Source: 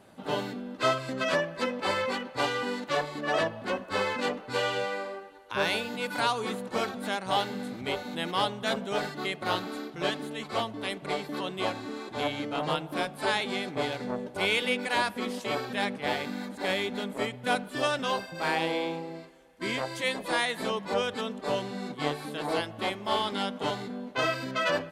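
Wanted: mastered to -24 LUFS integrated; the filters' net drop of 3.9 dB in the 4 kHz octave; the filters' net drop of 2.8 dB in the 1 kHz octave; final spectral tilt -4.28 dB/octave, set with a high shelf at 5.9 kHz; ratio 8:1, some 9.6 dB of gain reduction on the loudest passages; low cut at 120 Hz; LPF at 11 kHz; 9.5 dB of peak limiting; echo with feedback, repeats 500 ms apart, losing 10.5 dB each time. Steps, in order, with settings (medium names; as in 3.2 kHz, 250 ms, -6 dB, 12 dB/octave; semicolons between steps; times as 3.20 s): high-pass 120 Hz; low-pass 11 kHz; peaking EQ 1 kHz -3.5 dB; peaking EQ 4 kHz -7.5 dB; treble shelf 5.9 kHz +8 dB; compression 8:1, threshold -34 dBFS; peak limiter -32 dBFS; feedback delay 500 ms, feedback 30%, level -10.5 dB; trim +17.5 dB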